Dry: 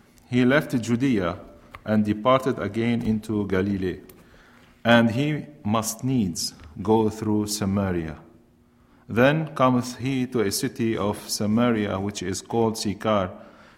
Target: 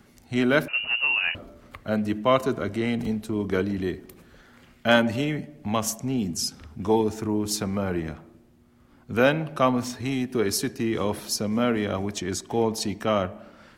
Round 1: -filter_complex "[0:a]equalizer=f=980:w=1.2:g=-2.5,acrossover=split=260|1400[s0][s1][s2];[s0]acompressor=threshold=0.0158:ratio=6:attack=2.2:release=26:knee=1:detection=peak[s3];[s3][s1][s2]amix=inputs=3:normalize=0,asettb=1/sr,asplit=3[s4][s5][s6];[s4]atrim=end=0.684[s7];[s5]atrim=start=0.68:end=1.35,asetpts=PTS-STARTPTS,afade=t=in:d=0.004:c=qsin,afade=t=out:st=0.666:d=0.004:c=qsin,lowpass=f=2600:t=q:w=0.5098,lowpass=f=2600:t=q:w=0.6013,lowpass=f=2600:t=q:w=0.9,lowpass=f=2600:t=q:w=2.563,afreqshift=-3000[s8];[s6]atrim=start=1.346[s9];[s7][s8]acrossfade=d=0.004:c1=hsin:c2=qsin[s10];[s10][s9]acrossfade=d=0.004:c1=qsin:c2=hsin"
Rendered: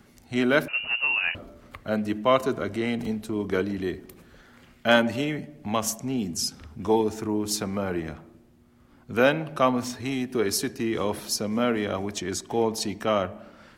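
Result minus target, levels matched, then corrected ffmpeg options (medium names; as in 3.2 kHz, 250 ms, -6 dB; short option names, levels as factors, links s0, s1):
compression: peak gain reduction +5 dB
-filter_complex "[0:a]equalizer=f=980:w=1.2:g=-2.5,acrossover=split=260|1400[s0][s1][s2];[s0]acompressor=threshold=0.0316:ratio=6:attack=2.2:release=26:knee=1:detection=peak[s3];[s3][s1][s2]amix=inputs=3:normalize=0,asettb=1/sr,asplit=3[s4][s5][s6];[s4]atrim=end=0.684[s7];[s5]atrim=start=0.68:end=1.35,asetpts=PTS-STARTPTS,afade=t=in:d=0.004:c=qsin,afade=t=out:st=0.666:d=0.004:c=qsin,lowpass=f=2600:t=q:w=0.5098,lowpass=f=2600:t=q:w=0.6013,lowpass=f=2600:t=q:w=0.9,lowpass=f=2600:t=q:w=2.563,afreqshift=-3000[s8];[s6]atrim=start=1.346[s9];[s7][s8]acrossfade=d=0.004:c1=hsin:c2=qsin[s10];[s10][s9]acrossfade=d=0.004:c1=qsin:c2=hsin"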